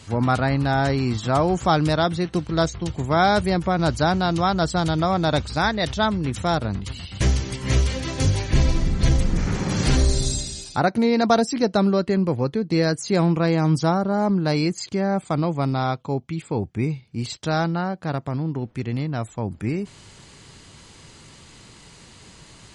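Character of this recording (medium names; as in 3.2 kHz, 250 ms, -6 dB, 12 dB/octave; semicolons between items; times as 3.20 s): noise floor -48 dBFS; spectral tilt -5.5 dB/octave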